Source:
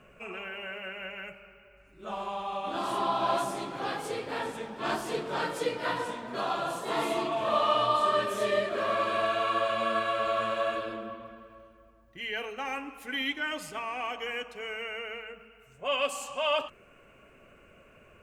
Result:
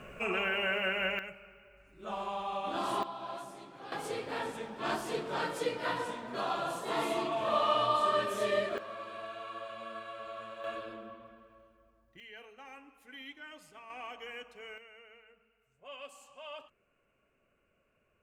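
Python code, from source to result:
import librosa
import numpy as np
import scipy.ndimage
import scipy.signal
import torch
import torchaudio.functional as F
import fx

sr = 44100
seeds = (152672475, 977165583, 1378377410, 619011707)

y = fx.gain(x, sr, db=fx.steps((0.0, 7.5), (1.19, -2.0), (3.03, -14.0), (3.92, -3.0), (8.78, -15.0), (10.64, -8.0), (12.2, -16.0), (13.9, -9.5), (14.78, -18.0)))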